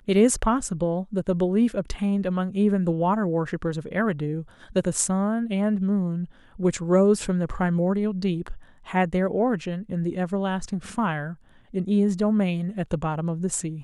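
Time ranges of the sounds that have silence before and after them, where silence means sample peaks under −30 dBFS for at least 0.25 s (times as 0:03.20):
0:04.76–0:06.25
0:06.60–0:08.52
0:08.90–0:11.32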